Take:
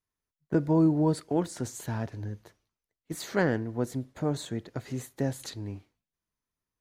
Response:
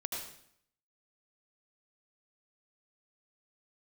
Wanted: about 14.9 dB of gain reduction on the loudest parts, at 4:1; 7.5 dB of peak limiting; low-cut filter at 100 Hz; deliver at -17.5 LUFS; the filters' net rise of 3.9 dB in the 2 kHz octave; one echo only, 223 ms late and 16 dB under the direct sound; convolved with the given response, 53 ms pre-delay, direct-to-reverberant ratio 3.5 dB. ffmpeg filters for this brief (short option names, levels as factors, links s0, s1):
-filter_complex "[0:a]highpass=100,equalizer=f=2000:t=o:g=5,acompressor=threshold=0.0141:ratio=4,alimiter=level_in=2.24:limit=0.0631:level=0:latency=1,volume=0.447,aecho=1:1:223:0.158,asplit=2[s0][s1];[1:a]atrim=start_sample=2205,adelay=53[s2];[s1][s2]afir=irnorm=-1:irlink=0,volume=0.531[s3];[s0][s3]amix=inputs=2:normalize=0,volume=15.8"